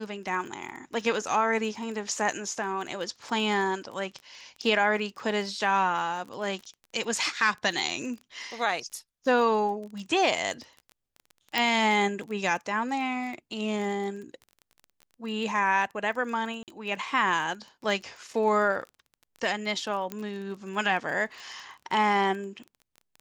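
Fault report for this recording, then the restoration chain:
surface crackle 20 per second −36 dBFS
0:11.58: click −10 dBFS
0:16.63–0:16.68: drop-out 48 ms
0:20.12: click −18 dBFS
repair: click removal
repair the gap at 0:16.63, 48 ms

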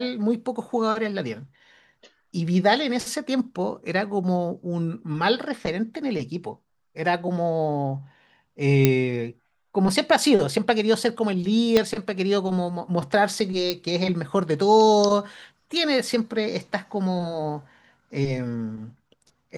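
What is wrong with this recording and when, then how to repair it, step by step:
0:08.85: click −3 dBFS
0:11.77: click −6 dBFS
0:13.70: click −9 dBFS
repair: click removal

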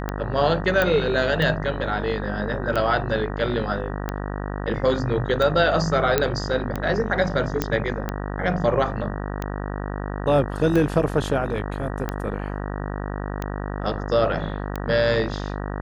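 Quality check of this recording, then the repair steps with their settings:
mains buzz 50 Hz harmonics 38 −29 dBFS
scratch tick 45 rpm −13 dBFS
0:00.82: click −8 dBFS
0:06.18: click −4 dBFS
0:07.62: click −7 dBFS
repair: click removal
hum removal 50 Hz, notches 38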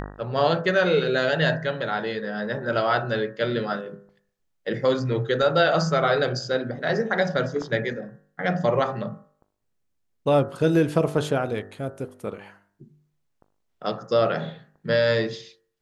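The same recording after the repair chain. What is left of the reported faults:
none of them is left

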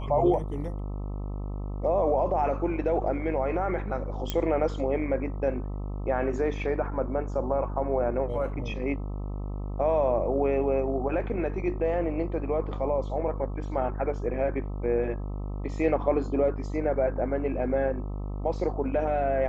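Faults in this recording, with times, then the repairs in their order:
mains buzz 50 Hz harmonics 26 −33 dBFS
0:04.30: click −13 dBFS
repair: click removal
hum removal 50 Hz, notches 26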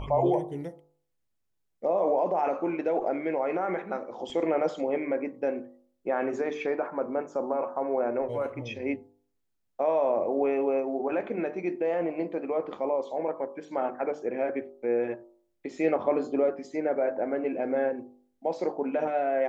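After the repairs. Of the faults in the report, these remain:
none of them is left

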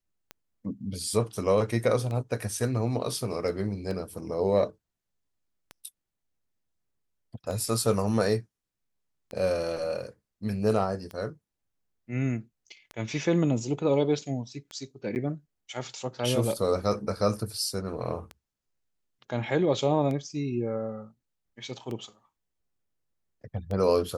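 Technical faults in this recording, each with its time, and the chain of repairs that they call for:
scratch tick 33 1/3 rpm −23 dBFS
0:15.15–0:15.16: drop-out 9.7 ms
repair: click removal
repair the gap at 0:15.15, 9.7 ms

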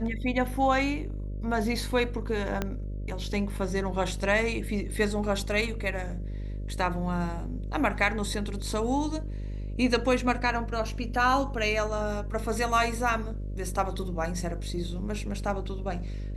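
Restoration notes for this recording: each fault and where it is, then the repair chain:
mains buzz 50 Hz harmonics 12 −34 dBFS
0:02.62: click −14 dBFS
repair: click removal
hum removal 50 Hz, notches 12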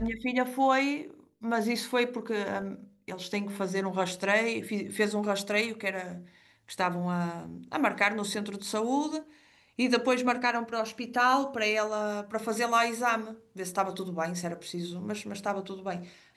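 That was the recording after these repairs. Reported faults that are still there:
0:02.62: click

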